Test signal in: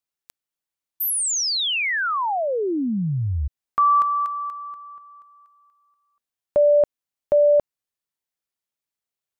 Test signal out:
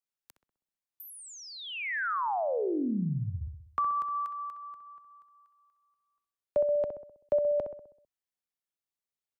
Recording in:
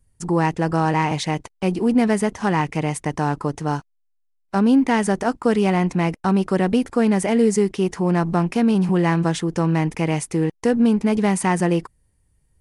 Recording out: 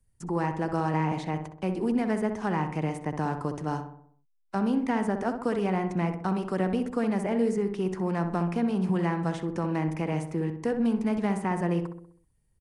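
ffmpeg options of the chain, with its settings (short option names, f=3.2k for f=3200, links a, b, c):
-filter_complex "[0:a]acrossover=split=130|600|2200[a][b][c][d];[a]acompressor=threshold=-33dB:ratio=4[e];[b]acompressor=threshold=-19dB:ratio=4[f];[c]acompressor=threshold=-21dB:ratio=4[g];[d]acompressor=threshold=-43dB:ratio=4[h];[e][f][g][h]amix=inputs=4:normalize=0,asplit=2[i][j];[j]adelay=64,lowpass=f=1.6k:p=1,volume=-6.5dB,asplit=2[k][l];[l]adelay=64,lowpass=f=1.6k:p=1,volume=0.54,asplit=2[m][n];[n]adelay=64,lowpass=f=1.6k:p=1,volume=0.54,asplit=2[o][p];[p]adelay=64,lowpass=f=1.6k:p=1,volume=0.54,asplit=2[q][r];[r]adelay=64,lowpass=f=1.6k:p=1,volume=0.54,asplit=2[s][t];[t]adelay=64,lowpass=f=1.6k:p=1,volume=0.54,asplit=2[u][v];[v]adelay=64,lowpass=f=1.6k:p=1,volume=0.54[w];[i][k][m][o][q][s][u][w]amix=inputs=8:normalize=0,volume=-7.5dB"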